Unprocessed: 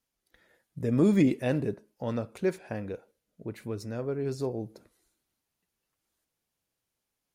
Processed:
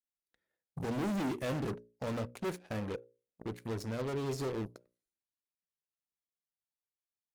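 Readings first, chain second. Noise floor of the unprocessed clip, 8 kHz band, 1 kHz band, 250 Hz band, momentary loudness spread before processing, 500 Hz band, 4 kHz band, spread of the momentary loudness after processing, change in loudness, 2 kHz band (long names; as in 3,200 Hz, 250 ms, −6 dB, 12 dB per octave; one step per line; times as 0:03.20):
−85 dBFS, 0.0 dB, +1.0 dB, −9.0 dB, 17 LU, −6.5 dB, +0.5 dB, 10 LU, −8.0 dB, −3.0 dB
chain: gain into a clipping stage and back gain 30.5 dB
harmonic generator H 5 −29 dB, 7 −16 dB, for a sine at −30 dBFS
mains-hum notches 60/120/180/240/300/360/420/480/540/600 Hz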